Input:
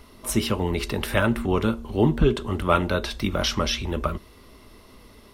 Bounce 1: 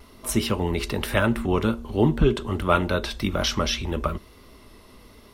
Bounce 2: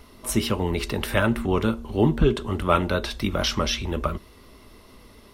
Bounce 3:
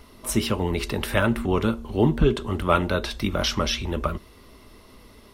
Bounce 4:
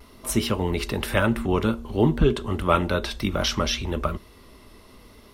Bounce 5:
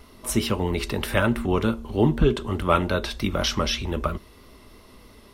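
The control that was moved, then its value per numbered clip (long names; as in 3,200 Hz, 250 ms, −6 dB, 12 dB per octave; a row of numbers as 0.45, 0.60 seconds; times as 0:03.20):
pitch vibrato, speed: 1.2, 6.8, 12, 0.6, 3.2 Hertz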